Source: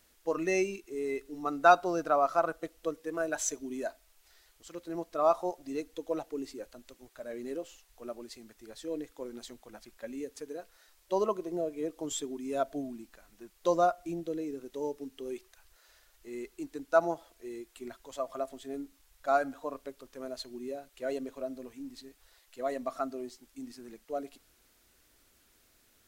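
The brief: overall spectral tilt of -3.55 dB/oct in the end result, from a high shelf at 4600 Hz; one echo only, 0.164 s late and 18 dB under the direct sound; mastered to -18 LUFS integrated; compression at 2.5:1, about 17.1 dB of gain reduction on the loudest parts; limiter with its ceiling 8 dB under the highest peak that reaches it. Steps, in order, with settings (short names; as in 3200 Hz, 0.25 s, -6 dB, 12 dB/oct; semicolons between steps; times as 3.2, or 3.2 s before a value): high shelf 4600 Hz +5.5 dB; compressor 2.5:1, threshold -42 dBFS; limiter -32 dBFS; echo 0.164 s -18 dB; gain +27 dB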